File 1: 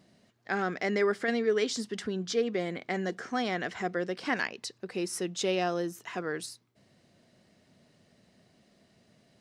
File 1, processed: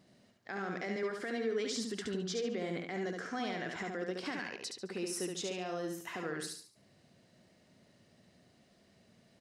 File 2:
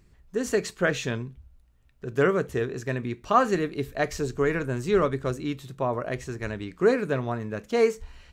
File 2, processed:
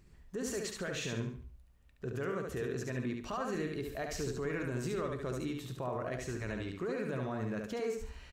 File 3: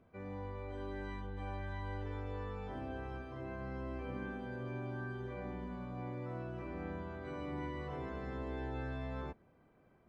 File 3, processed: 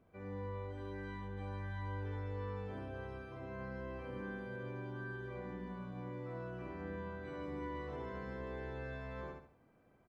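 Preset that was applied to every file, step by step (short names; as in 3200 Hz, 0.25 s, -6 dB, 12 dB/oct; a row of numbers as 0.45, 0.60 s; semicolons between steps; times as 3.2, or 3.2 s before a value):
compressor 3:1, threshold -27 dBFS; limiter -26.5 dBFS; on a send: feedback echo 71 ms, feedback 34%, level -4 dB; on the sum: gain -3 dB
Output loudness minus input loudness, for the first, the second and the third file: -6.5, -11.0, -1.5 LU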